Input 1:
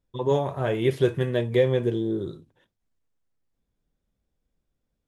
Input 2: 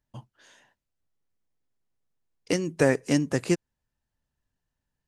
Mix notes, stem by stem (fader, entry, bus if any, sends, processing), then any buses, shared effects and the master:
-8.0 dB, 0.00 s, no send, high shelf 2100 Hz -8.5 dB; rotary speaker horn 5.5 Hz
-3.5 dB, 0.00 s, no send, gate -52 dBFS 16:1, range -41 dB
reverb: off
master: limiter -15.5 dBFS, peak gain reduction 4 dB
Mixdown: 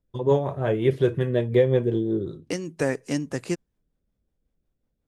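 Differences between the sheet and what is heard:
stem 1 -8.0 dB -> +3.5 dB; master: missing limiter -15.5 dBFS, peak gain reduction 4 dB

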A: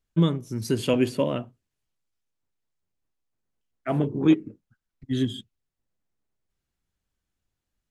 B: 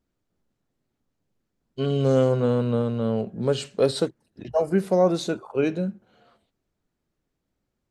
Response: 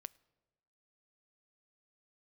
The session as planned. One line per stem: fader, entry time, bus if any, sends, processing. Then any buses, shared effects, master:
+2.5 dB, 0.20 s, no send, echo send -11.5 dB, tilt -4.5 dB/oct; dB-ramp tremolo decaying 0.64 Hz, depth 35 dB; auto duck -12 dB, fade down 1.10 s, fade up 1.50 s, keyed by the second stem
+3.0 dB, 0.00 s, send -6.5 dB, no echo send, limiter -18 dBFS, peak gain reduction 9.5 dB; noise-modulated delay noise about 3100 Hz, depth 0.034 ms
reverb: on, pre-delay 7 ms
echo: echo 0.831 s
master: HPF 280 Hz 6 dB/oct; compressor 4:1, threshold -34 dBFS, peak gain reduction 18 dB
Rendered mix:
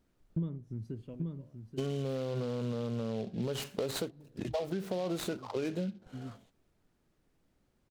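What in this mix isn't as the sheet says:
stem A +2.5 dB -> -5.5 dB; master: missing HPF 280 Hz 6 dB/oct

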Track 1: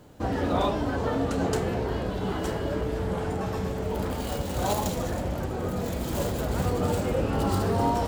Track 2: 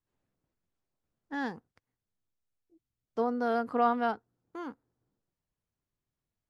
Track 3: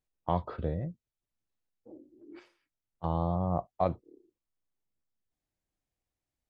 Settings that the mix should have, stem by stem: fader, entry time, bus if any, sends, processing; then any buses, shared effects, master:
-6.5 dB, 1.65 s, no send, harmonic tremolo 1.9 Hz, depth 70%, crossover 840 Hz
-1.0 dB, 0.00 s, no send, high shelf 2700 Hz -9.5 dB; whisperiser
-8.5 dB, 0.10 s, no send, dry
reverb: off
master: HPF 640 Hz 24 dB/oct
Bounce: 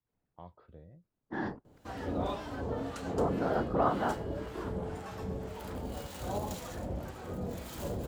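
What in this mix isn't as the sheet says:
stem 3 -8.5 dB -> -20.5 dB; master: missing HPF 640 Hz 24 dB/oct

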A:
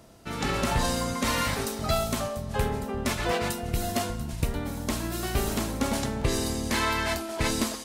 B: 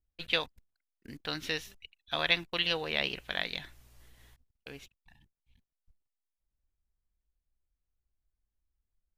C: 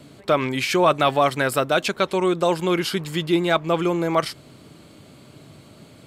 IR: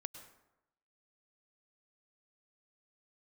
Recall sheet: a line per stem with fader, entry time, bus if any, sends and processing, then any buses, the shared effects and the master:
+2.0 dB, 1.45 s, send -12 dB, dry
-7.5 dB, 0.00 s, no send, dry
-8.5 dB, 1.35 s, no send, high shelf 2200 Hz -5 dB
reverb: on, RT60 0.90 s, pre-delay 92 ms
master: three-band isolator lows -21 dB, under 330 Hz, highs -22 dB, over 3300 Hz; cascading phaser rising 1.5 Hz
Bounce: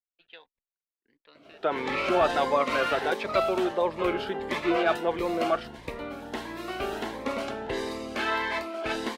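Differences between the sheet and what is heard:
stem B -7.5 dB -> -15.0 dB; stem C -8.5 dB -> -2.0 dB

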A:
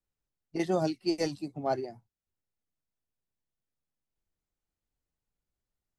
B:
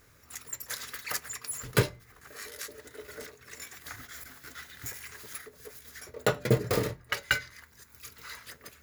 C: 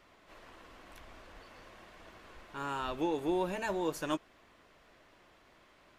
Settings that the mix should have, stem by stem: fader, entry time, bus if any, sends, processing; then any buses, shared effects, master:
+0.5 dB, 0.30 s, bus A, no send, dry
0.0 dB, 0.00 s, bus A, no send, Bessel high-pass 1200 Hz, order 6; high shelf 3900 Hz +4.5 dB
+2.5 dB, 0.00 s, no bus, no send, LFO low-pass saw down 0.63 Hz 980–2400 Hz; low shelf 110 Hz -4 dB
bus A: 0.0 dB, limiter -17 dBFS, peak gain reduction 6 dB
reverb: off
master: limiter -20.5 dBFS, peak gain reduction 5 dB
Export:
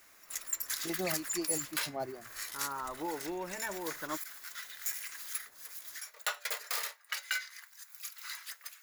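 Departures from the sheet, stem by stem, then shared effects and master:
stem A +0.5 dB -> -8.0 dB; stem C +2.5 dB -> -7.5 dB

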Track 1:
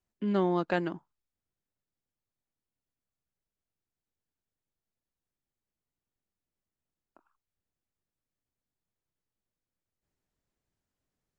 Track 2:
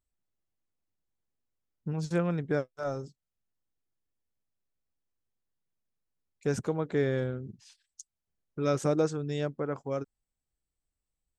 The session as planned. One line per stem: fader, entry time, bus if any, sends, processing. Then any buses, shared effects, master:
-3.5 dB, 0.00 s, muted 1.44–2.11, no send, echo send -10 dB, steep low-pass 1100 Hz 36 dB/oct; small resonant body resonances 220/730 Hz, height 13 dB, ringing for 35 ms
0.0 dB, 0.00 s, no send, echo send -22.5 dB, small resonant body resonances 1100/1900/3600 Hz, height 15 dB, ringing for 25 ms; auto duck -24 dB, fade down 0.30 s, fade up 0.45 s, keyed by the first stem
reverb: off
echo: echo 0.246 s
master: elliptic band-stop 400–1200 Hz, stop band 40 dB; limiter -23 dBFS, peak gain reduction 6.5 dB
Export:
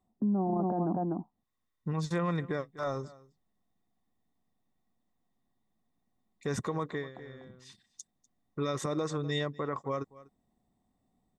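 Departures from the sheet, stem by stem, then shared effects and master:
stem 1 -3.5 dB -> +6.0 dB; master: missing elliptic band-stop 400–1200 Hz, stop band 40 dB

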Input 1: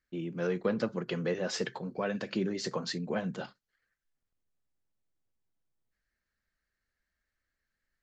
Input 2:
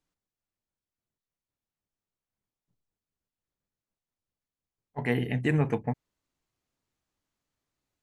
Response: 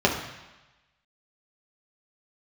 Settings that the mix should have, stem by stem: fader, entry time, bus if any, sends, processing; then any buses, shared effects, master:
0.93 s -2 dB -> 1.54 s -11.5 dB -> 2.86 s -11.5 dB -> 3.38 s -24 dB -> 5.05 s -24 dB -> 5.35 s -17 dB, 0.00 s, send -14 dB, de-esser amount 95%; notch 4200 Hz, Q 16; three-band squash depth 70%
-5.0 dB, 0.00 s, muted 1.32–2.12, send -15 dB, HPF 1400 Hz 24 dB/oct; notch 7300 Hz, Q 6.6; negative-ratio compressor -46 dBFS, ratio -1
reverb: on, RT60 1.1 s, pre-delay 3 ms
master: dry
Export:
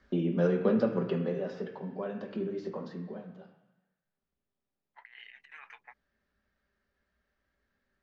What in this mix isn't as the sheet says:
stem 2: send off; master: extra air absorption 190 m

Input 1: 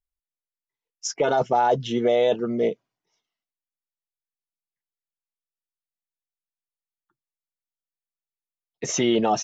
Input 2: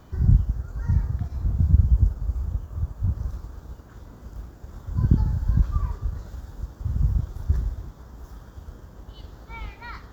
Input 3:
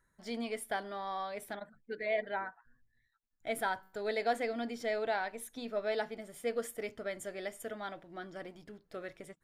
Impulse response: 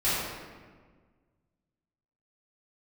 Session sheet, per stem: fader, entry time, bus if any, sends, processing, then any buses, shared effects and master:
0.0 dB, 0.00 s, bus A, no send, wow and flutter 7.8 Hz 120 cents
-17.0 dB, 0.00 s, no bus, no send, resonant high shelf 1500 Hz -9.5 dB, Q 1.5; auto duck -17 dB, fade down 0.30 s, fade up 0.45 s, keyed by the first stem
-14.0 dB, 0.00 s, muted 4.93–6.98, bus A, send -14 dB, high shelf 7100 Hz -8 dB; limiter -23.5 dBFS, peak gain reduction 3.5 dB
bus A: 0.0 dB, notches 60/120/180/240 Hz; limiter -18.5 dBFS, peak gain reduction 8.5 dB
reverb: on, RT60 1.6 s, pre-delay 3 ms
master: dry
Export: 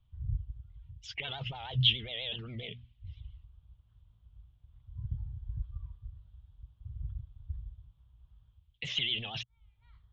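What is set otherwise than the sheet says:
stem 1 0.0 dB -> +8.0 dB; stem 3: muted; reverb: off; master: extra EQ curve 120 Hz 0 dB, 240 Hz -22 dB, 360 Hz -25 dB, 1400 Hz -15 dB, 3300 Hz +10 dB, 5900 Hz -27 dB

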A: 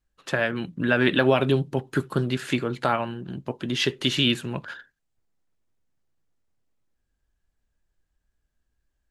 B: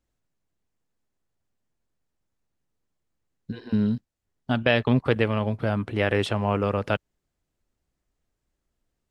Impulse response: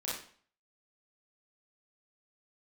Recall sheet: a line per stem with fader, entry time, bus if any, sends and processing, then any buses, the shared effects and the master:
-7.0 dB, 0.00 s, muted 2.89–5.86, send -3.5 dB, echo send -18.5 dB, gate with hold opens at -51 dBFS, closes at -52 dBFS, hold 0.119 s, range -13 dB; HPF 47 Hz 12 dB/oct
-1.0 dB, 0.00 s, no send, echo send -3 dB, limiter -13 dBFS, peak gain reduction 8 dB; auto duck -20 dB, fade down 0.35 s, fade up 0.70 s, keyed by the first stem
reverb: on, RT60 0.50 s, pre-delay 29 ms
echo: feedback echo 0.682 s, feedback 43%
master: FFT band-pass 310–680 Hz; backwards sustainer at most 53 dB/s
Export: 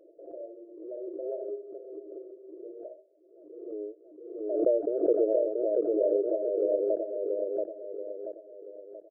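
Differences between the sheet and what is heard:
stem A -7.0 dB -> -18.0 dB; stem B: missing limiter -13 dBFS, peak gain reduction 8 dB

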